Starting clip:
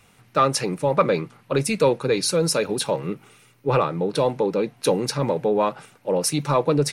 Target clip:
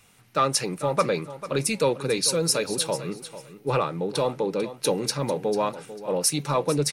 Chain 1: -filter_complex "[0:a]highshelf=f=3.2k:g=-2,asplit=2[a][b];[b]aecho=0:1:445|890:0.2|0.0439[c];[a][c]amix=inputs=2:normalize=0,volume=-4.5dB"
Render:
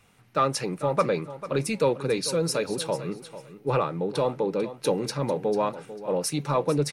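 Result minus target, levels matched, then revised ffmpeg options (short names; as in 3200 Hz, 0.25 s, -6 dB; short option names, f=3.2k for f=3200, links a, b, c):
8000 Hz band -6.0 dB
-filter_complex "[0:a]highshelf=f=3.2k:g=7,asplit=2[a][b];[b]aecho=0:1:445|890:0.2|0.0439[c];[a][c]amix=inputs=2:normalize=0,volume=-4.5dB"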